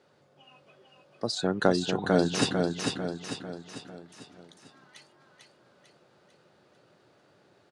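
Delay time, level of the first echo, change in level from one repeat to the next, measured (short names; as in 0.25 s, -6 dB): 0.447 s, -4.0 dB, -6.0 dB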